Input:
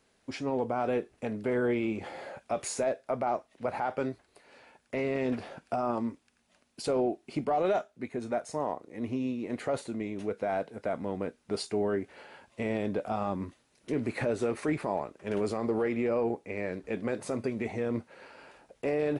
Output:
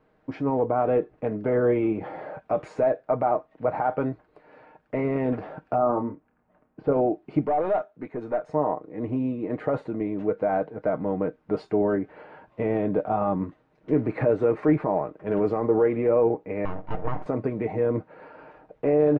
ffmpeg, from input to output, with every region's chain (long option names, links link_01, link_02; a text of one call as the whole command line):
ffmpeg -i in.wav -filter_complex "[0:a]asettb=1/sr,asplit=3[link_01][link_02][link_03];[link_01]atrim=end=5.784[link_04];[link_02]atrim=start=5.78:end=6.93,asetpts=PTS-STARTPTS,afade=type=in:duration=0.004:curve=qsin,afade=type=out:start_time=1.146:duration=0.004:curve=qsin,lowpass=1600,asplit=2[link_05][link_06];[link_06]adelay=29,volume=-8.5dB[link_07];[link_05][link_07]amix=inputs=2:normalize=0,atrim=end_sample=50715[link_08];[link_03]atrim=start=6.926[link_09];[link_04][link_08]acrossfade=duration=0.004:curve1=hsin:curve2=qsin[link_10];[link_10][link_09]acrossfade=duration=0.004:curve1=qsin:curve2=hsin,asettb=1/sr,asplit=3[link_11][link_12][link_13];[link_11]atrim=end=7.474[link_14];[link_12]atrim=start=7.47:end=8.48,asetpts=PTS-STARTPTS,afade=type=in:duration=0.004:curve=qsin,afade=type=out:start_time=1.006:duration=0.004:curve=qsin,lowshelf=frequency=240:gain=-6,aeval=exprs='(tanh(20*val(0)+0.15)-tanh(0.15))/20':channel_layout=same[link_15];[link_13]atrim=start=8.476[link_16];[link_14][link_15]acrossfade=duration=0.004:curve1=hsin:curve2=qsin[link_17];[link_17][link_16]acrossfade=duration=0.004:curve1=qsin:curve2=hsin,asettb=1/sr,asplit=3[link_18][link_19][link_20];[link_18]atrim=end=16.654[link_21];[link_19]atrim=start=16.65:end=17.26,asetpts=PTS-STARTPTS,afade=type=in:duration=0.004:curve=qsin,afade=type=out:start_time=0.606:duration=0.004:curve=qsin,highshelf=frequency=4100:gain=-5.5,bandreject=frequency=50:width_type=h:width=6,bandreject=frequency=100:width_type=h:width=6,bandreject=frequency=150:width_type=h:width=6,bandreject=frequency=200:width_type=h:width=6,bandreject=frequency=250:width_type=h:width=6,bandreject=frequency=300:width_type=h:width=6,bandreject=frequency=350:width_type=h:width=6,bandreject=frequency=400:width_type=h:width=6,bandreject=frequency=450:width_type=h:width=6,bandreject=frequency=500:width_type=h:width=6,aeval=exprs='abs(val(0))':channel_layout=same[link_22];[link_20]atrim=start=17.256[link_23];[link_21][link_22]acrossfade=duration=0.004:curve1=hsin:curve2=qsin[link_24];[link_24][link_23]acrossfade=duration=0.004:curve1=qsin:curve2=hsin,lowpass=1300,aecho=1:1:6.5:0.48,volume=6.5dB" out.wav